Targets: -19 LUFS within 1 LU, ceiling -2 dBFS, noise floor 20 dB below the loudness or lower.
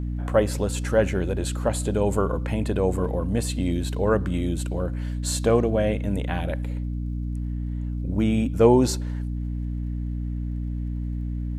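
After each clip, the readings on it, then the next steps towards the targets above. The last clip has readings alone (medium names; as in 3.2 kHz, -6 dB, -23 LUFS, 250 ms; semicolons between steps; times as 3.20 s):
tick rate 39 per s; hum 60 Hz; highest harmonic 300 Hz; hum level -26 dBFS; loudness -25.0 LUFS; peak level -4.5 dBFS; loudness target -19.0 LUFS
-> de-click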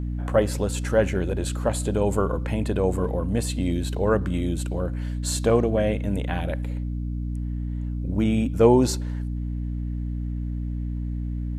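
tick rate 0.086 per s; hum 60 Hz; highest harmonic 300 Hz; hum level -26 dBFS
-> hum notches 60/120/180/240/300 Hz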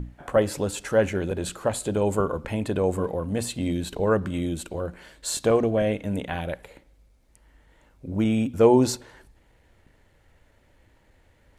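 hum not found; loudness -25.0 LUFS; peak level -5.5 dBFS; loudness target -19.0 LUFS
-> trim +6 dB; peak limiter -2 dBFS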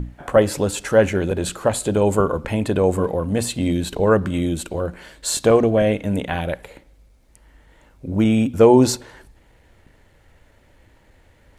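loudness -19.5 LUFS; peak level -2.0 dBFS; noise floor -55 dBFS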